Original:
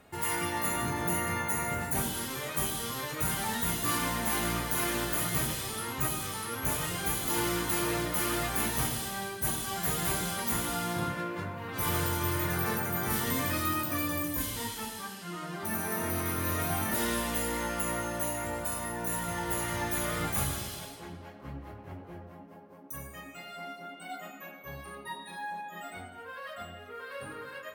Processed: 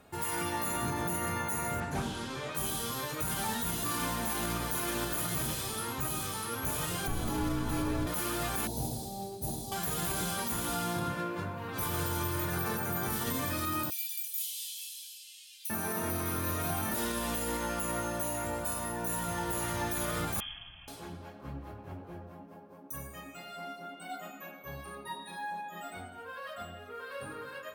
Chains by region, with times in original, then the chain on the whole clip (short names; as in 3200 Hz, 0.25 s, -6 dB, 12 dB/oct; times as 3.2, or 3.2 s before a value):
1.8–2.55 air absorption 82 m + Doppler distortion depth 0.16 ms
7.07–8.07 tilt -2.5 dB/oct + frequency shift -42 Hz
8.67–9.72 Chebyshev band-stop 800–4000 Hz, order 3 + high shelf 3000 Hz -7 dB + short-mantissa float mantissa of 2-bit
13.9–15.7 steep high-pass 2600 Hz 48 dB/oct + core saturation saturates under 3700 Hz
20.4–20.88 inverted band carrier 3300 Hz + EQ curve 120 Hz 0 dB, 420 Hz -25 dB, 700 Hz -9 dB
whole clip: limiter -23 dBFS; bell 2000 Hz -7.5 dB 0.22 oct; notch 2900 Hz, Q 27